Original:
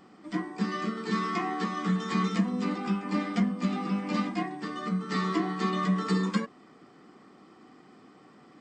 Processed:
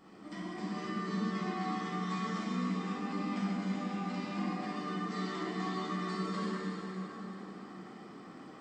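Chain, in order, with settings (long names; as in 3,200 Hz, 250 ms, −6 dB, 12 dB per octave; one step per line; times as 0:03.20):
0:00.85–0:01.44: low shelf with overshoot 120 Hz −12.5 dB, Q 3
downward compressor 2.5 to 1, threshold −42 dBFS, peak gain reduction 15.5 dB
dense smooth reverb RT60 4.4 s, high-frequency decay 0.75×, DRR −9.5 dB
level −5.5 dB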